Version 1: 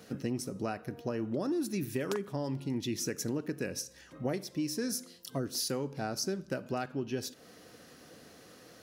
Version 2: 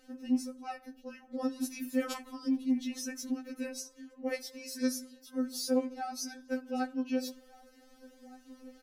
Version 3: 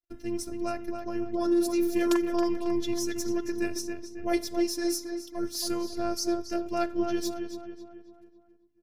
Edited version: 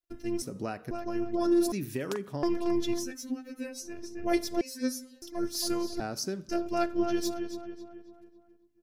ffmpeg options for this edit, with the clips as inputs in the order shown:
-filter_complex "[0:a]asplit=3[a][b][c];[1:a]asplit=2[d][e];[2:a]asplit=6[f][g][h][i][j][k];[f]atrim=end=0.422[l];[a]atrim=start=0.418:end=0.912[m];[g]atrim=start=0.908:end=1.722[n];[b]atrim=start=1.718:end=2.432[o];[h]atrim=start=2.428:end=3.16[p];[d]atrim=start=2.92:end=4.04[q];[i]atrim=start=3.8:end=4.612[r];[e]atrim=start=4.608:end=5.222[s];[j]atrim=start=5.218:end=6.002[t];[c]atrim=start=5.998:end=6.492[u];[k]atrim=start=6.488[v];[l][m]acrossfade=d=0.004:c1=hsin:c2=hsin[w];[w][n]acrossfade=d=0.004:c1=hsin:c2=hsin[x];[x][o]acrossfade=d=0.004:c1=hsin:c2=hsin[y];[y][p]acrossfade=d=0.004:c1=hsin:c2=hsin[z];[z][q]acrossfade=d=0.24:c1=tri:c2=tri[aa];[aa][r]acrossfade=d=0.24:c1=tri:c2=tri[ab];[ab][s]acrossfade=d=0.004:c1=hsin:c2=hsin[ac];[ac][t]acrossfade=d=0.004:c1=hsin:c2=hsin[ad];[ad][u]acrossfade=d=0.004:c1=hsin:c2=hsin[ae];[ae][v]acrossfade=d=0.004:c1=hsin:c2=hsin"

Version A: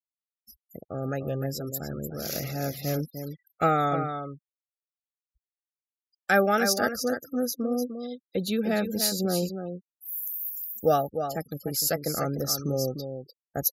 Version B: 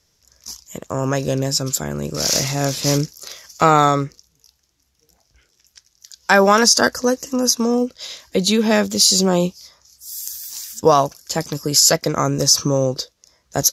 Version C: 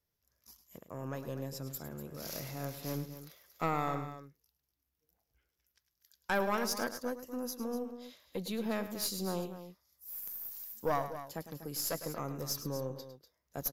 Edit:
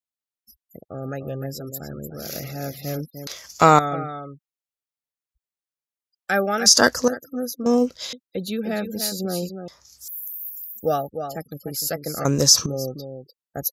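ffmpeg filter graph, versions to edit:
-filter_complex "[1:a]asplit=5[a][b][c][d][e];[0:a]asplit=6[f][g][h][i][j][k];[f]atrim=end=3.272[l];[a]atrim=start=3.268:end=3.792[m];[g]atrim=start=3.788:end=6.662[n];[b]atrim=start=6.658:end=7.082[o];[h]atrim=start=7.078:end=7.662[p];[c]atrim=start=7.658:end=8.132[q];[i]atrim=start=8.128:end=9.682[r];[d]atrim=start=9.678:end=10.082[s];[j]atrim=start=10.078:end=12.252[t];[e]atrim=start=12.248:end=12.662[u];[k]atrim=start=12.658[v];[l][m]acrossfade=d=0.004:c1=hsin:c2=hsin[w];[w][n]acrossfade=d=0.004:c1=hsin:c2=hsin[x];[x][o]acrossfade=d=0.004:c1=hsin:c2=hsin[y];[y][p]acrossfade=d=0.004:c1=hsin:c2=hsin[z];[z][q]acrossfade=d=0.004:c1=hsin:c2=hsin[aa];[aa][r]acrossfade=d=0.004:c1=hsin:c2=hsin[ab];[ab][s]acrossfade=d=0.004:c1=hsin:c2=hsin[ac];[ac][t]acrossfade=d=0.004:c1=hsin:c2=hsin[ad];[ad][u]acrossfade=d=0.004:c1=hsin:c2=hsin[ae];[ae][v]acrossfade=d=0.004:c1=hsin:c2=hsin"

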